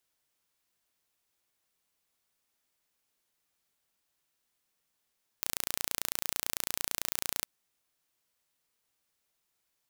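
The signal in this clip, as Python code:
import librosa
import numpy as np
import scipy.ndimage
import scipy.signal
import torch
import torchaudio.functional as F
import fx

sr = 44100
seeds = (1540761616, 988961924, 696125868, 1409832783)

y = 10.0 ** (-4.0 / 20.0) * (np.mod(np.arange(round(2.03 * sr)), round(sr / 29.0)) == 0)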